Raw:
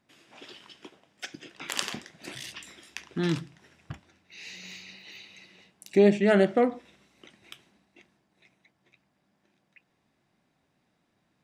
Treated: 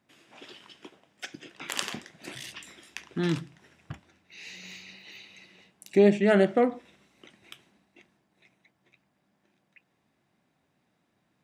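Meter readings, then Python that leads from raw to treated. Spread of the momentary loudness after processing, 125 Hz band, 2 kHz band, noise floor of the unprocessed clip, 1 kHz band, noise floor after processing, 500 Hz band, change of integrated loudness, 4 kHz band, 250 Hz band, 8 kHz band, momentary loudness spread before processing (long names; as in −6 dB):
22 LU, 0.0 dB, 0.0 dB, −74 dBFS, 0.0 dB, −74 dBFS, 0.0 dB, 0.0 dB, −1.0 dB, 0.0 dB, −1.0 dB, 23 LU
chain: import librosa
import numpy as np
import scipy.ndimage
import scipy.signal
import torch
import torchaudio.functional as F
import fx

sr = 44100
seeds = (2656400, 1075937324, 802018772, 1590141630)

y = scipy.signal.sosfilt(scipy.signal.butter(2, 62.0, 'highpass', fs=sr, output='sos'), x)
y = fx.peak_eq(y, sr, hz=4900.0, db=-2.5, octaves=0.77)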